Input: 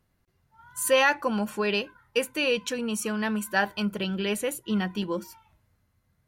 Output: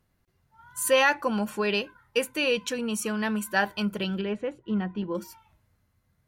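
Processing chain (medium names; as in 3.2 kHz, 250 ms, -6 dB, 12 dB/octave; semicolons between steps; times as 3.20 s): 4.21–5.15 s: tape spacing loss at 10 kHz 37 dB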